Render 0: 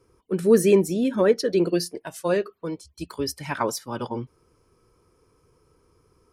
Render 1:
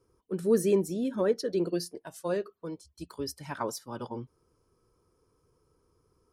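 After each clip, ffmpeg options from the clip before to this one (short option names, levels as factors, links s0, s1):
-af "equalizer=f=2300:t=o:w=0.77:g=-6.5,volume=0.422"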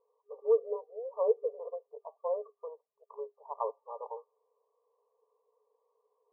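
-af "afftfilt=real='re*between(b*sr/4096,410,1200)':imag='im*between(b*sr/4096,410,1200)':win_size=4096:overlap=0.75"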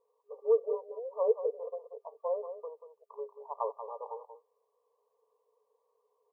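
-af "aecho=1:1:185:0.316"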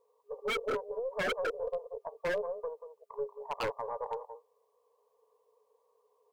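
-af "aeval=exprs='0.0299*(abs(mod(val(0)/0.0299+3,4)-2)-1)':c=same,acontrast=30,aeval=exprs='0.0562*(cos(1*acos(clip(val(0)/0.0562,-1,1)))-cos(1*PI/2))+0.00501*(cos(2*acos(clip(val(0)/0.0562,-1,1)))-cos(2*PI/2))':c=same,volume=0.891"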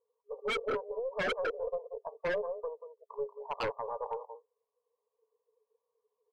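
-af "afftdn=nr=15:nf=-53"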